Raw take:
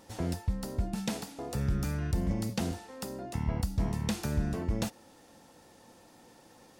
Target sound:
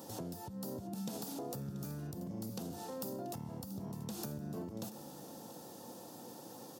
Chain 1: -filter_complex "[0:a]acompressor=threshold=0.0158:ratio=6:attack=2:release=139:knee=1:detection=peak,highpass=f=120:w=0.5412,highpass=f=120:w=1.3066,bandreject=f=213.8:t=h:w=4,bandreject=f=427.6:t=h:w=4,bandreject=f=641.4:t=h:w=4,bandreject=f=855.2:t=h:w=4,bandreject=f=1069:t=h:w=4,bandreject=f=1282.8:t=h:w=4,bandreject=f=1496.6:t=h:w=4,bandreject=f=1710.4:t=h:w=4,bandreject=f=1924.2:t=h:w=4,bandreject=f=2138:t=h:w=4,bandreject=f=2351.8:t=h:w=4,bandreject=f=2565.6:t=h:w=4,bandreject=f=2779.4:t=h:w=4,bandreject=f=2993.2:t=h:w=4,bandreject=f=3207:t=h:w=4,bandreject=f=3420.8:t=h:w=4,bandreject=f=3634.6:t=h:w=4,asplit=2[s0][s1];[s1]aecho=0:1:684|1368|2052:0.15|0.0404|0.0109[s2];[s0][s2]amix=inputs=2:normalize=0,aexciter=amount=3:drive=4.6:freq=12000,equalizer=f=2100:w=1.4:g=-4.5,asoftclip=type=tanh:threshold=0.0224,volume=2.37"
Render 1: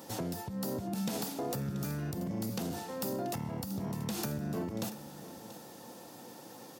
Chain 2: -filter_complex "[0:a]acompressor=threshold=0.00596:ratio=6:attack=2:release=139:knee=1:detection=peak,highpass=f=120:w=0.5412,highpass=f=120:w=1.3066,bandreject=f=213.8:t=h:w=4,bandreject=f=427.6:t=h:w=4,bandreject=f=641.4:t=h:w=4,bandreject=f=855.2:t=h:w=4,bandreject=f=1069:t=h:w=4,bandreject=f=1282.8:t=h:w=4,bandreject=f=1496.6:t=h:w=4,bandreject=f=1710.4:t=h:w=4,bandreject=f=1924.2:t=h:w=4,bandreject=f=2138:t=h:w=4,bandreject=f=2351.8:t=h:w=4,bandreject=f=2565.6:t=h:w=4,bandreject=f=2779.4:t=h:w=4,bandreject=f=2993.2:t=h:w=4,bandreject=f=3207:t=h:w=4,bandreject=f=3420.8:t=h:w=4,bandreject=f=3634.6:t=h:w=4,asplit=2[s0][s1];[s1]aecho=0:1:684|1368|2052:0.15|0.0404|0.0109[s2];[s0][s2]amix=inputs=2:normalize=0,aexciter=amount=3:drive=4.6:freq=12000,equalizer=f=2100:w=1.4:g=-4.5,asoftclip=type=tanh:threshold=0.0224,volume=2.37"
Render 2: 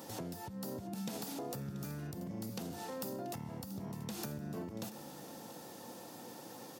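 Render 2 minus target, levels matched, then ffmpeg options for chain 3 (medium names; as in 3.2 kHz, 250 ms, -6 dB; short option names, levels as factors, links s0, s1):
2 kHz band +6.5 dB
-filter_complex "[0:a]acompressor=threshold=0.00596:ratio=6:attack=2:release=139:knee=1:detection=peak,highpass=f=120:w=0.5412,highpass=f=120:w=1.3066,bandreject=f=213.8:t=h:w=4,bandreject=f=427.6:t=h:w=4,bandreject=f=641.4:t=h:w=4,bandreject=f=855.2:t=h:w=4,bandreject=f=1069:t=h:w=4,bandreject=f=1282.8:t=h:w=4,bandreject=f=1496.6:t=h:w=4,bandreject=f=1710.4:t=h:w=4,bandreject=f=1924.2:t=h:w=4,bandreject=f=2138:t=h:w=4,bandreject=f=2351.8:t=h:w=4,bandreject=f=2565.6:t=h:w=4,bandreject=f=2779.4:t=h:w=4,bandreject=f=2993.2:t=h:w=4,bandreject=f=3207:t=h:w=4,bandreject=f=3420.8:t=h:w=4,bandreject=f=3634.6:t=h:w=4,asplit=2[s0][s1];[s1]aecho=0:1:684|1368|2052:0.15|0.0404|0.0109[s2];[s0][s2]amix=inputs=2:normalize=0,aexciter=amount=3:drive=4.6:freq=12000,equalizer=f=2100:w=1.4:g=-14.5,asoftclip=type=tanh:threshold=0.0224,volume=2.37"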